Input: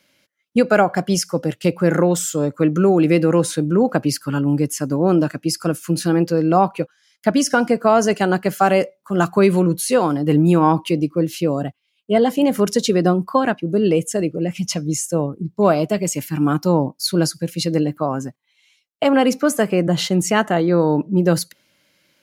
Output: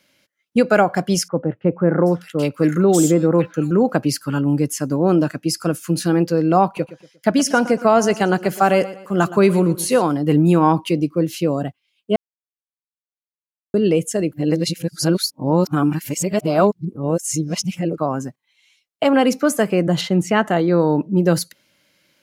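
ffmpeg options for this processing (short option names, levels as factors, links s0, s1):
-filter_complex "[0:a]asettb=1/sr,asplit=3[s0][s1][s2];[s0]atrim=end=1.284[s3];[s1]atrim=start=1.28:end=3.71,asetpts=PTS-STARTPTS,afade=t=in:d=0.004:c=qsin,afade=t=out:st=2.426:d=0.004:c=qsin,acrossover=split=1700[s4][s5];[s5]adelay=780[s6];[s4][s6]amix=inputs=2:normalize=0,atrim=end_sample=107163[s7];[s2]atrim=start=3.706[s8];[s3][s7]acrossfade=d=0.004:c1=hsin:c2=qsin[s9];[s9][s8]acrossfade=d=0.004:c1=qsin:c2=hsin,asettb=1/sr,asplit=3[s10][s11][s12];[s10]atrim=end=6.654[s13];[s11]atrim=start=6.65:end=10.02,asetpts=PTS-STARTPTS,afade=t=in:d=0.004:c=qsin,afade=t=out:st=3.366:d=0.004:c=qsin,aecho=1:1:118|236|354:0.158|0.0586|0.0217,atrim=end_sample=148617[s14];[s12]atrim=start=10.016[s15];[s13][s14]acrossfade=d=0.004:c1=hsin:c2=qsin[s16];[s16][s15]acrossfade=d=0.004:c1=qsin:c2=hsin,asettb=1/sr,asplit=3[s17][s18][s19];[s17]atrim=end=20.014[s20];[s18]atrim=start=20.01:end=20.46,asetpts=PTS-STARTPTS,afade=t=in:d=0.004:c=qsin,afade=t=out:st=0.446:d=0.004:c=qsin,bass=f=250:g=1,treble=f=4000:g=-10[s21];[s19]atrim=start=20.456[s22];[s20][s21]acrossfade=d=0.004:c1=hsin:c2=qsin[s23];[s23][s22]acrossfade=d=0.004:c1=qsin:c2=hsin,asplit=5[s24][s25][s26][s27][s28];[s24]atrim=end=12.16,asetpts=PTS-STARTPTS,afade=t=out:st=12.156:d=0.004:c=hsin[s29];[s25]atrim=start=12.16:end=13.74,asetpts=PTS-STARTPTS,volume=0[s30];[s26]atrim=start=13.74:end=14.322,asetpts=PTS-STARTPTS,afade=t=in:d=0.004:c=hsin[s31];[s27]atrim=start=14.318:end=17.982,asetpts=PTS-STARTPTS,areverse[s32];[s28]atrim=start=17.978[s33];[s29][s30][s31]concat=n=3:v=0:a=1[s34];[s34][s32]acrossfade=d=0.004:c1=hsin:c2=hsin[s35];[s35][s33]acrossfade=d=0.004:c1=hsin:c2=hsin"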